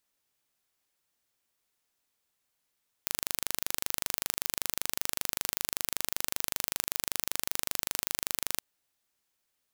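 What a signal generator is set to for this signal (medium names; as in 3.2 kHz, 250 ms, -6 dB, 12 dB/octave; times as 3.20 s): pulse train 25.2 per s, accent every 0, -2 dBFS 5.52 s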